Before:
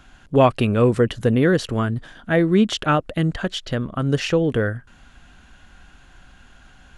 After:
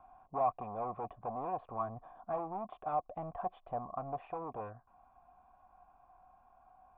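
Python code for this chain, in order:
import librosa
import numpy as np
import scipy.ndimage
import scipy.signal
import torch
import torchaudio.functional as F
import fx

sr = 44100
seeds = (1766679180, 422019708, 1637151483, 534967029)

y = np.clip(x, -10.0 ** (-21.0 / 20.0), 10.0 ** (-21.0 / 20.0))
y = fx.rider(y, sr, range_db=10, speed_s=0.5)
y = fx.formant_cascade(y, sr, vowel='a')
y = y * 10.0 ** (3.5 / 20.0)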